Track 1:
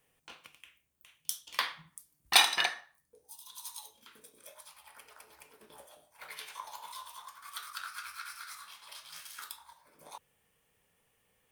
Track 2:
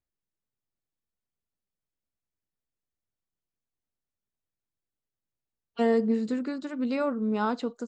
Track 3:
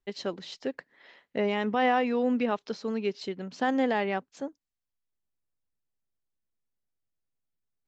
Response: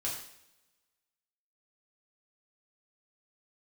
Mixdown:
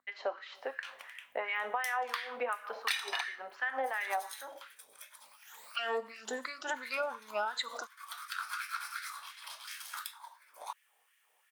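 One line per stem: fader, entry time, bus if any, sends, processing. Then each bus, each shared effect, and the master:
+1.0 dB, 0.55 s, no send, auto duck -8 dB, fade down 0.25 s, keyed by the second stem
-4.0 dB, 0.00 s, send -14 dB, moving spectral ripple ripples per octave 1, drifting +2.5 Hz, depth 16 dB; soft clip -12 dBFS, distortion -19 dB; backwards sustainer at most 68 dB/s
-1.5 dB, 0.00 s, send -6.5 dB, hum 50 Hz, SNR 16 dB; three-band isolator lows -12 dB, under 320 Hz, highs -19 dB, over 2400 Hz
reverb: on, pre-delay 3 ms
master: LFO high-pass sine 2.8 Hz 680–1900 Hz; compressor 16:1, threshold -30 dBFS, peak gain reduction 18 dB

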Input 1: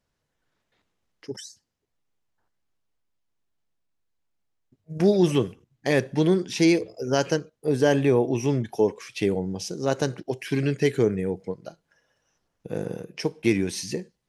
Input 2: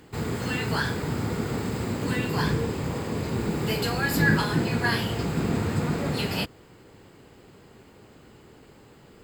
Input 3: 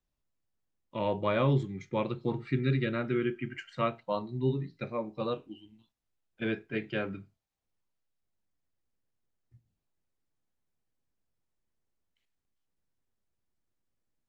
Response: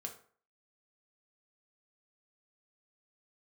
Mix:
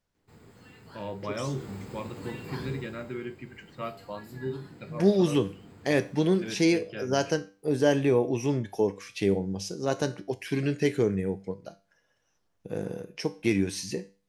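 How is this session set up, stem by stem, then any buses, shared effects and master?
+2.5 dB, 0.00 s, no send, dry
1.3 s -19 dB -> 1.63 s -8 dB -> 2.72 s -8 dB -> 3.36 s -20 dB, 0.15 s, no send, dry
-0.5 dB, 0.00 s, no send, dry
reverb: off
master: resonator 98 Hz, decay 0.35 s, harmonics all, mix 60%

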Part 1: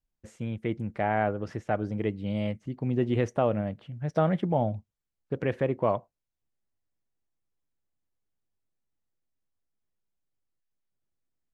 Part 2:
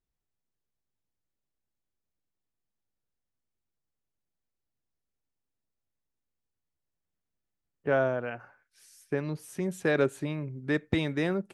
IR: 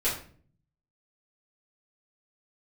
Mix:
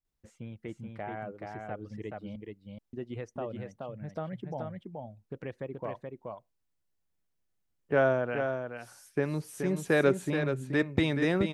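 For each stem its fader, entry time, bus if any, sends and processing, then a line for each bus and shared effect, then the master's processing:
-7.0 dB, 0.00 s, muted 2.36–2.93, no send, echo send -3.5 dB, reverb removal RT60 1.1 s; compressor 1.5:1, threshold -34 dBFS, peak gain reduction 5.5 dB
+1.0 dB, 0.05 s, no send, echo send -7 dB, dry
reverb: off
echo: echo 0.427 s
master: dry

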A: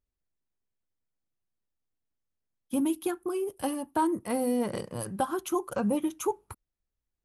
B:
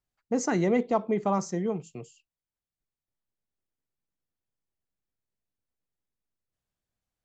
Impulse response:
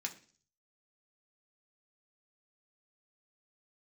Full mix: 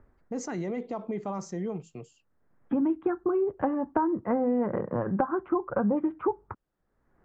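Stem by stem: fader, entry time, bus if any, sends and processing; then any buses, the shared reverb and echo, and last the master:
+2.0 dB, 0.00 s, no send, steep low-pass 1800 Hz 36 dB/oct; three-band squash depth 100%; auto duck -18 dB, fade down 0.55 s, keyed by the second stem
-1.5 dB, 0.00 s, no send, limiter -23.5 dBFS, peak gain reduction 10 dB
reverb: off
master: high shelf 4500 Hz -6.5 dB

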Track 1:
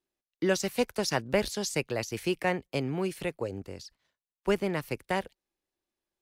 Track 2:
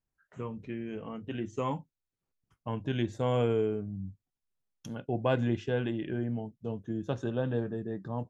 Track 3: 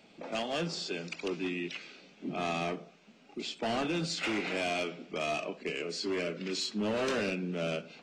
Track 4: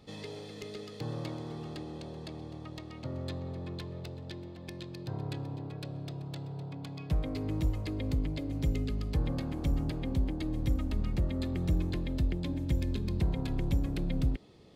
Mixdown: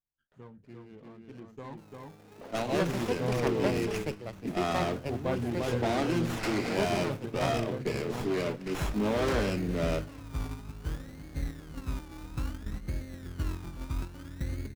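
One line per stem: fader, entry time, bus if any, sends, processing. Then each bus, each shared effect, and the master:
-5.0 dB, 2.30 s, no send, no echo send, dry
-4.5 dB, 0.00 s, no send, echo send -3 dB, dry
+3.0 dB, 2.20 s, no send, no echo send, dry
-3.5 dB, 1.70 s, no send, echo send -9.5 dB, Bessel low-pass 1200 Hz; de-hum 58.42 Hz, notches 5; decimation with a swept rate 29×, swing 60% 0.6 Hz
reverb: off
echo: echo 0.345 s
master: gate -33 dBFS, range -7 dB; running maximum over 9 samples

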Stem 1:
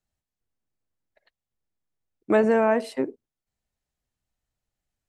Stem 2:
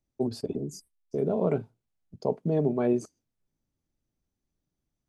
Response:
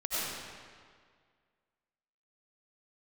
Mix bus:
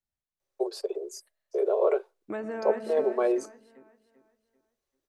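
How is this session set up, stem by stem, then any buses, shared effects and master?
-10.5 dB, 0.00 s, send -19 dB, echo send -6 dB, compressor 2:1, threshold -26 dBFS, peak gain reduction 6.5 dB
+2.0 dB, 0.40 s, no send, no echo send, steep high-pass 360 Hz 96 dB/oct; small resonant body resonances 550/1100/3900 Hz, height 7 dB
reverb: on, RT60 1.9 s, pre-delay 55 ms
echo: feedback echo 0.391 s, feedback 34%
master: bell 1500 Hz +2.5 dB

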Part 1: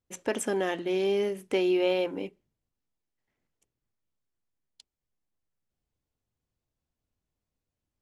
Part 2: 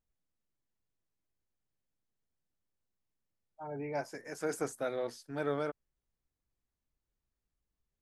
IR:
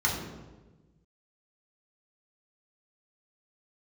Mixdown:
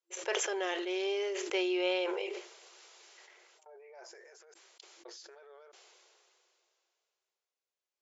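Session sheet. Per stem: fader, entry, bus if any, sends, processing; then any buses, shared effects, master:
-4.5 dB, 0.00 s, no send, tilt shelf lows -4.5 dB, about 860 Hz; notch 1800 Hz, Q 22
-9.0 dB, 0.00 s, muted 4.54–5.05, no send, transient shaper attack -9 dB, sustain +6 dB; dB-ramp tremolo decaying 0.82 Hz, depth 21 dB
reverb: off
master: FFT band-pass 340–7500 Hz; sustainer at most 21 dB/s

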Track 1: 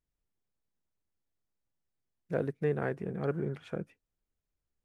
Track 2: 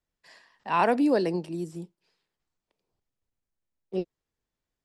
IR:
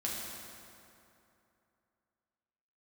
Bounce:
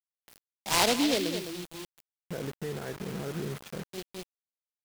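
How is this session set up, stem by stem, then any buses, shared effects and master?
+1.0 dB, 0.00 s, send -15 dB, no echo send, requantised 8-bit, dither none; limiter -28.5 dBFS, peak gain reduction 11.5 dB
+2.5 dB, 0.00 s, no send, echo send -16 dB, noise-modulated delay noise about 3300 Hz, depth 0.19 ms; auto duck -18 dB, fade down 1.95 s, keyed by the first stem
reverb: on, RT60 2.8 s, pre-delay 5 ms
echo: echo 0.208 s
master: bit-crush 7-bit

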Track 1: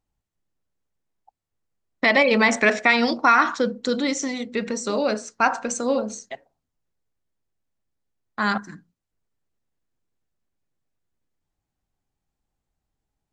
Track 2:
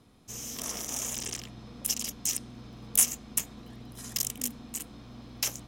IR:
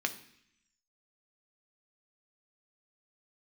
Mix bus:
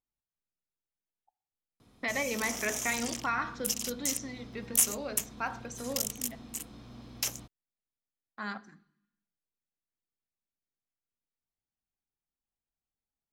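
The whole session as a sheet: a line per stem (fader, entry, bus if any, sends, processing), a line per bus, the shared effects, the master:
-19.5 dB, 0.00 s, send -7.5 dB, dry
-2.0 dB, 1.80 s, no send, dry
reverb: on, RT60 0.70 s, pre-delay 3 ms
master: dry

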